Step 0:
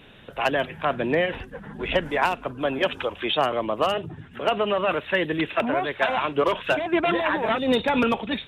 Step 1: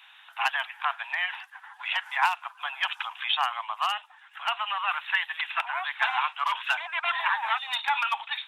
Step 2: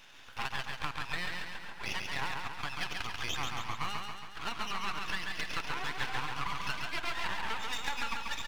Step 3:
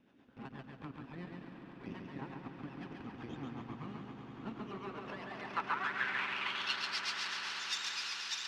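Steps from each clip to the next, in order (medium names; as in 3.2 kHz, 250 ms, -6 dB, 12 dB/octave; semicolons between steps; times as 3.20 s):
steep high-pass 800 Hz 72 dB/octave
half-wave rectifier; compression, threshold -33 dBFS, peak gain reduction 13 dB; on a send: feedback delay 138 ms, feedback 57%, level -4 dB; on the sum: trim +1 dB
rotary cabinet horn 8 Hz; band-pass sweep 250 Hz -> 5.2 kHz, 4.48–6.99 s; echo with a slow build-up 97 ms, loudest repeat 8, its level -15 dB; trim +9 dB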